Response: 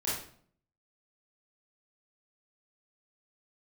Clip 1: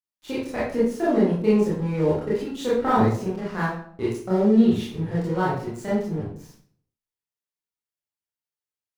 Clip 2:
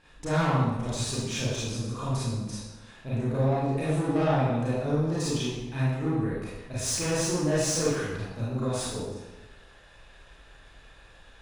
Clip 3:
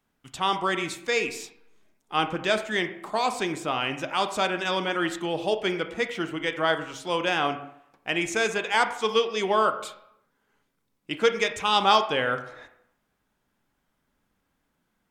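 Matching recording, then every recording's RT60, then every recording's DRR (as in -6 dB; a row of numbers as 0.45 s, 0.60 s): 1; 0.55 s, 1.1 s, 0.80 s; -9.0 dB, -9.5 dB, 8.0 dB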